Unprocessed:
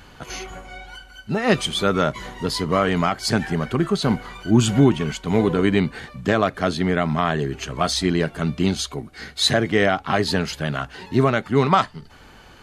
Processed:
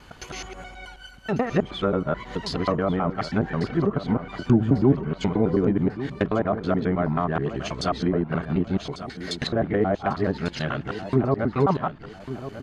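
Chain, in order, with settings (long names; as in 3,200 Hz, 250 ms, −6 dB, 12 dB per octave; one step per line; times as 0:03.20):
reversed piece by piece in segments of 107 ms
treble cut that deepens with the level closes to 850 Hz, closed at −15 dBFS
repeating echo 1,146 ms, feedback 35%, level −12.5 dB
level −2.5 dB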